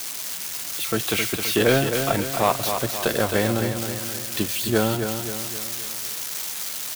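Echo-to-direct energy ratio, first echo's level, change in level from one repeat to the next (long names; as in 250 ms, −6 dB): −6.0 dB, −7.0 dB, −6.0 dB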